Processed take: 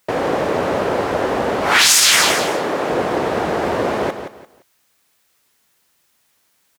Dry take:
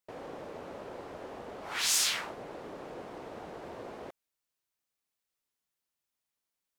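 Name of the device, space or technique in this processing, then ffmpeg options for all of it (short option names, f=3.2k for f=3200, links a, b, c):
mastering chain: -filter_complex "[0:a]asettb=1/sr,asplit=3[a][b][c];[a]atrim=end=2.344[d];[b]atrim=start=2.34:end=2.89,asetpts=PTS-STARTPTS,afade=t=in:d=0.004:c=qsin,afade=t=out:st=0.546:d=0.004:c=qsin,highpass=f=260:p=1[e];[c]atrim=start=2.886[f];[d][e]acrossfade=d=0.004:c1=hsin:c2=qsin[g];[g][f]acrossfade=d=0.004:c1=qsin:c2=hsin,highpass=53,equalizer=f=1.7k:t=o:w=0.77:g=2.5,aecho=1:1:172|344|516:0.335|0.0904|0.0244,acompressor=threshold=-34dB:ratio=2,alimiter=level_in=25dB:limit=-1dB:release=50:level=0:latency=1,volume=-1dB"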